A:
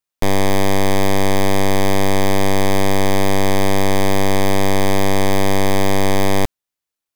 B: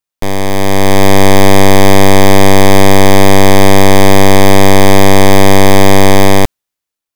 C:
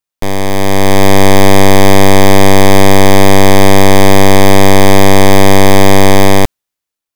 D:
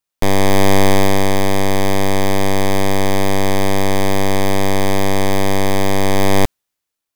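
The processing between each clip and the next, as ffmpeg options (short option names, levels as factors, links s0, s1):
-af "dynaudnorm=f=180:g=9:m=4.22,volume=1.12"
-af anull
-af "aeval=exprs='0.891*sin(PI/2*1.58*val(0)/0.891)':c=same,volume=0.473"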